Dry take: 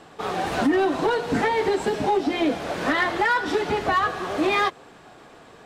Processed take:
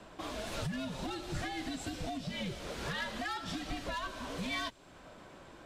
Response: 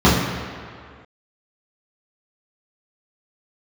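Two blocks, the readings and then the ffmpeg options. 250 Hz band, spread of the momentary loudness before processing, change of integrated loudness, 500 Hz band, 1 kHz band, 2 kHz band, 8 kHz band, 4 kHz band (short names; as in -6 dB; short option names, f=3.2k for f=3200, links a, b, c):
-14.5 dB, 5 LU, -15.5 dB, -20.5 dB, -18.5 dB, -15.5 dB, -6.0 dB, -8.5 dB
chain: -filter_complex "[0:a]acrossover=split=150|3000[a][b][c];[b]acompressor=threshold=-37dB:ratio=3[d];[a][d][c]amix=inputs=3:normalize=0,afreqshift=-120,volume=-5.5dB"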